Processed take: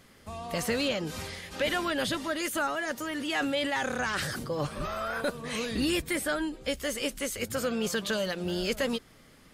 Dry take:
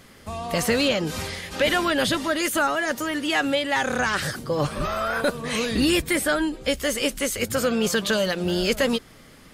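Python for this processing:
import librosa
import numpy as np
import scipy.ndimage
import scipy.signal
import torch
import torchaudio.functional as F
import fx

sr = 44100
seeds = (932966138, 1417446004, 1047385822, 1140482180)

y = fx.sustainer(x, sr, db_per_s=28.0, at=(3.04, 4.5))
y = y * 10.0 ** (-7.5 / 20.0)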